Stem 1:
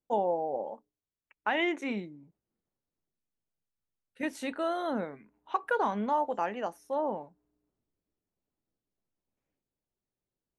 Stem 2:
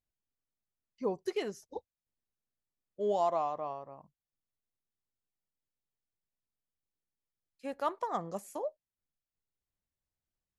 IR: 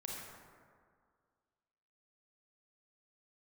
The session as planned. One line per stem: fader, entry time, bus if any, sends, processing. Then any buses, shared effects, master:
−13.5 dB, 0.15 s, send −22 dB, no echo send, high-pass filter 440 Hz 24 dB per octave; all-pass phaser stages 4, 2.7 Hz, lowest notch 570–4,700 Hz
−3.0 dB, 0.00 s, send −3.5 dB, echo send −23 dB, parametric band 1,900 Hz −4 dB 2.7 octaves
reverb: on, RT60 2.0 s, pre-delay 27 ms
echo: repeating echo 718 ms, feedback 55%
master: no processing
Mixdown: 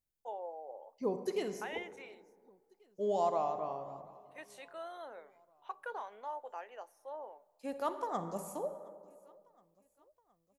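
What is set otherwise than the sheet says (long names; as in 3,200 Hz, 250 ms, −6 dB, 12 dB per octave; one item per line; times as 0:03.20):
stem 1: missing all-pass phaser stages 4, 2.7 Hz, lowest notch 570–4,700 Hz
master: extra high-shelf EQ 9,200 Hz +6 dB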